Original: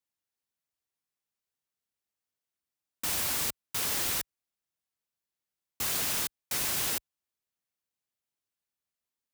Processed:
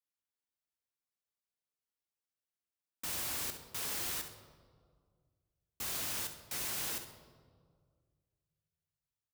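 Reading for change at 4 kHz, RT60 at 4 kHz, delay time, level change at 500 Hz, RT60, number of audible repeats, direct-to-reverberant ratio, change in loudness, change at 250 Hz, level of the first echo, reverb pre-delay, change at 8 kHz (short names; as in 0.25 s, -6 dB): -7.5 dB, 1.1 s, 66 ms, -6.5 dB, 1.9 s, 1, 6.5 dB, -7.5 dB, -6.5 dB, -11.0 dB, 18 ms, -7.5 dB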